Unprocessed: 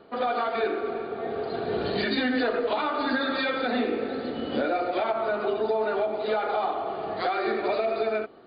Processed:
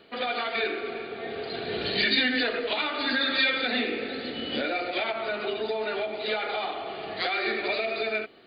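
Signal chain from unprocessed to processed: resonant high shelf 1600 Hz +10 dB, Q 1.5; gain -3.5 dB

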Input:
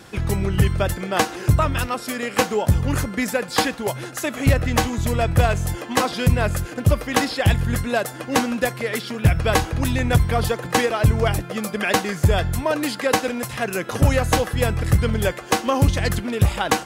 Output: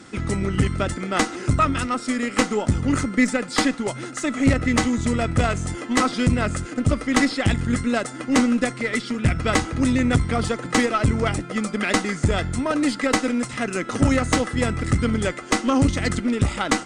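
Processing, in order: brick-wall FIR low-pass 9700 Hz; small resonant body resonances 260/1300/2000 Hz, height 12 dB, ringing for 30 ms; tube stage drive 4 dB, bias 0.55; high shelf 6000 Hz +9 dB; gain -2.5 dB

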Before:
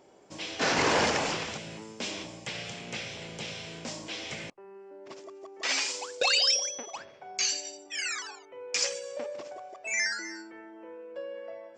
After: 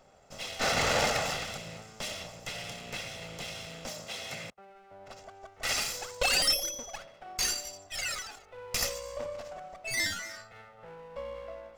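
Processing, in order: minimum comb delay 1.5 ms; 3.89–4.7 HPF 86 Hz

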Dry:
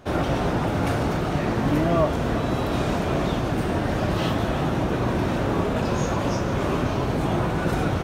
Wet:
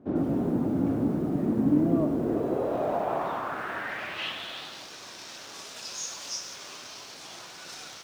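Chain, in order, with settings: 5.54–6.56 high shelf 7100 Hz +10.5 dB; in parallel at -7.5 dB: companded quantiser 4-bit; on the sum: band-pass sweep 260 Hz -> 5400 Hz, 2.03–4.93; lo-fi delay 98 ms, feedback 55%, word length 8-bit, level -12 dB

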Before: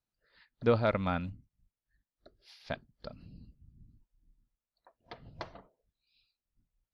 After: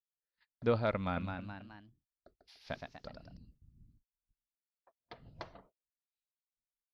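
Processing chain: gate -60 dBFS, range -27 dB; 0.95–3.37 echoes that change speed 0.218 s, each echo +1 st, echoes 3, each echo -6 dB; gain -4 dB

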